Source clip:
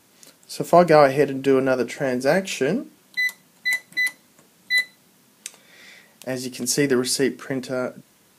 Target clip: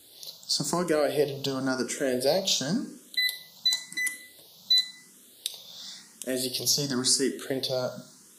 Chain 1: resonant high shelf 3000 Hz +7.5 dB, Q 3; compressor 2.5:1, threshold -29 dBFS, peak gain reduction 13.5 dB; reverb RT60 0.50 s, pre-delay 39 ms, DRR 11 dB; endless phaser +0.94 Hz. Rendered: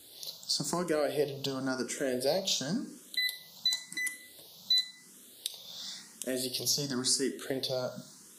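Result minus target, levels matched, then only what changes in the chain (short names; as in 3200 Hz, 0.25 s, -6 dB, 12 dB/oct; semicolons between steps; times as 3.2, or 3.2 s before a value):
compressor: peak gain reduction +5 dB
change: compressor 2.5:1, threshold -20.5 dBFS, peak gain reduction 8.5 dB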